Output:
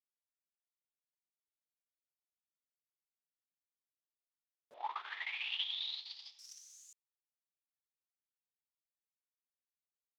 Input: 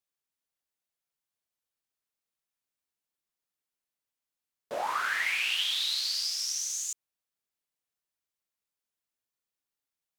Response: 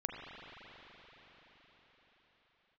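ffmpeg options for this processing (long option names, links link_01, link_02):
-filter_complex "[0:a]agate=range=-35dB:threshold=-27dB:ratio=16:detection=peak,acompressor=threshold=-51dB:ratio=4,asettb=1/sr,asplit=3[link_01][link_02][link_03];[link_01]atrim=end=4.744[link_04];[link_02]atrim=start=4.74:end=6.39,asetpts=PTS-STARTPTS,afade=type=in:duration=0.004:curve=qsin,afade=type=out:start_time=1.646:duration=0.004:curve=qsin,highpass=frequency=340:width=0.5412,highpass=frequency=340:width=1.3066,equalizer=frequency=540:width_type=q:width=4:gain=-5,equalizer=frequency=860:width_type=q:width=4:gain=8,equalizer=frequency=1500:width_type=q:width=4:gain=-9,equalizer=frequency=3500:width_type=q:width=4:gain=8,lowpass=frequency=3900:width=0.5412,lowpass=frequency=3900:width=1.3066[link_05];[link_03]atrim=start=6.386[link_06];[link_04][link_05]acrossfade=duration=0.004:curve1=hsin:curve2=qsin[link_07];[link_07][link_06]acrossfade=duration=0.004:curve1=qsin:curve2=hsin,volume=10.5dB"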